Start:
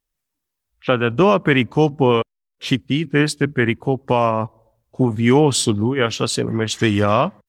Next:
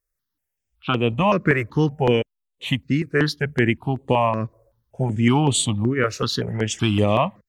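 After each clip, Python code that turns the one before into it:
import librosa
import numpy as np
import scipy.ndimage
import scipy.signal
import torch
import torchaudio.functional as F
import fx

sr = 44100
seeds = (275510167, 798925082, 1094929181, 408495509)

y = fx.phaser_held(x, sr, hz=5.3, low_hz=860.0, high_hz=5300.0)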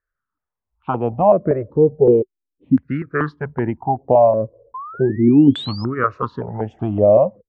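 y = fx.spec_paint(x, sr, seeds[0], shape='rise', start_s=4.74, length_s=1.11, low_hz=1000.0, high_hz=5300.0, level_db=-13.0)
y = fx.filter_lfo_lowpass(y, sr, shape='saw_down', hz=0.36, low_hz=270.0, high_hz=1600.0, q=7.2)
y = y * librosa.db_to_amplitude(-2.5)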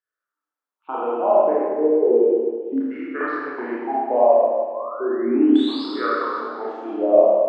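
y = scipy.signal.sosfilt(scipy.signal.butter(6, 290.0, 'highpass', fs=sr, output='sos'), x)
y = fx.rev_schroeder(y, sr, rt60_s=1.7, comb_ms=26, drr_db=-8.0)
y = y * librosa.db_to_amplitude(-9.5)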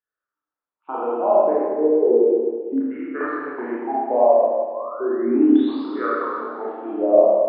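y = fx.air_absorb(x, sr, metres=490.0)
y = y * librosa.db_to_amplitude(1.5)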